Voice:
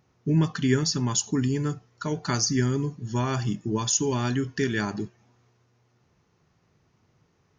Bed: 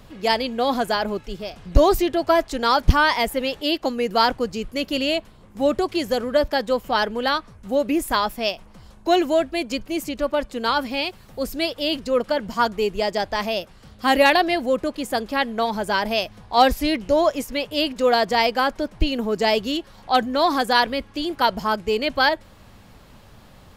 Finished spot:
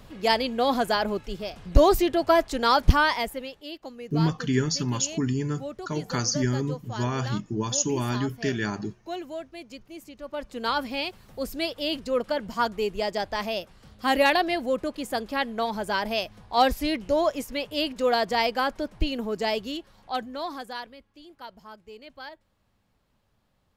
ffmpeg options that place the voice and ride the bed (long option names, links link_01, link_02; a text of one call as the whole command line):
ffmpeg -i stem1.wav -i stem2.wav -filter_complex "[0:a]adelay=3850,volume=-1.5dB[link_01];[1:a]volume=9.5dB,afade=type=out:start_time=2.87:duration=0.68:silence=0.188365,afade=type=in:start_time=10.23:duration=0.44:silence=0.266073,afade=type=out:start_time=18.98:duration=1.99:silence=0.125893[link_02];[link_01][link_02]amix=inputs=2:normalize=0" out.wav